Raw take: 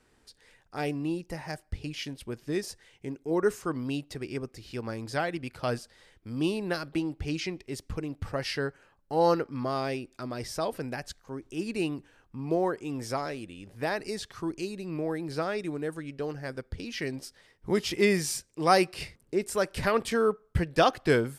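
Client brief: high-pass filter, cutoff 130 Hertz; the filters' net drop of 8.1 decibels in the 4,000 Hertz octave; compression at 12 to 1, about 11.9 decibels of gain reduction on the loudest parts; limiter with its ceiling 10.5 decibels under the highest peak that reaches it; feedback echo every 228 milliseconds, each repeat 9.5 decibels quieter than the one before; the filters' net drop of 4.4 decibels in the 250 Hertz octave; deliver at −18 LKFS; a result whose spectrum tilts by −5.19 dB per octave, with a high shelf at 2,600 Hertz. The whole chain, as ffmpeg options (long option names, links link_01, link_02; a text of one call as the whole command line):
ffmpeg -i in.wav -af "highpass=130,equalizer=frequency=250:width_type=o:gain=-6,highshelf=frequency=2600:gain=-4.5,equalizer=frequency=4000:width_type=o:gain=-7,acompressor=threshold=-30dB:ratio=12,alimiter=level_in=5dB:limit=-24dB:level=0:latency=1,volume=-5dB,aecho=1:1:228|456|684|912:0.335|0.111|0.0365|0.012,volume=22dB" out.wav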